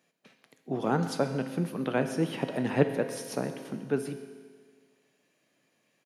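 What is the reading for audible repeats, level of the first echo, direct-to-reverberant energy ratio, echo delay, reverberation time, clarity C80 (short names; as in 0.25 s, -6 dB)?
1, -19.0 dB, 7.0 dB, 0.132 s, 1.7 s, 10.0 dB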